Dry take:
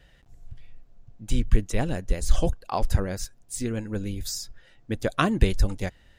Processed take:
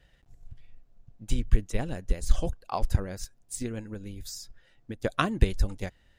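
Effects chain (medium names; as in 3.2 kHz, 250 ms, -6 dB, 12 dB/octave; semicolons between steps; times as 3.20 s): transient shaper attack +5 dB, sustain 0 dB; 3.90–5.04 s: compression 6:1, threshold -28 dBFS, peak gain reduction 9.5 dB; trim -6.5 dB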